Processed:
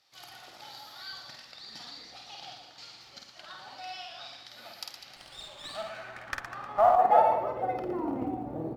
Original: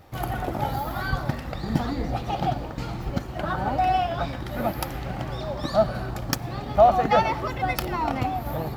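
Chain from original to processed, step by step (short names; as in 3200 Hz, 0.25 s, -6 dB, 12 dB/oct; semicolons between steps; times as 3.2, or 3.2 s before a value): reverse bouncing-ball echo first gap 50 ms, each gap 1.3×, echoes 5; band-pass sweep 4700 Hz -> 330 Hz, 5.22–8.14; short-mantissa float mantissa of 6-bit; 5.16–6.96 running maximum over 3 samples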